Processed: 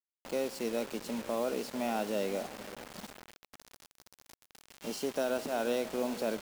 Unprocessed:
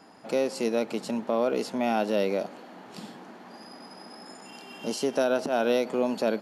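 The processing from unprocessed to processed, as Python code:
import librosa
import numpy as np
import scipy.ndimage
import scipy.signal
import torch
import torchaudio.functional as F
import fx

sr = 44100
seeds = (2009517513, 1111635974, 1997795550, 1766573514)

y = fx.echo_diffused(x, sr, ms=471, feedback_pct=48, wet_db=-14.5)
y = fx.quant_dither(y, sr, seeds[0], bits=6, dither='none')
y = F.gain(torch.from_numpy(y), -7.5).numpy()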